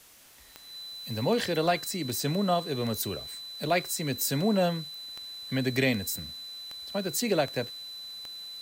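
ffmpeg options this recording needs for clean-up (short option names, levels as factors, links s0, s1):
-af "adeclick=t=4,bandreject=f=4000:w=30,afwtdn=0.002"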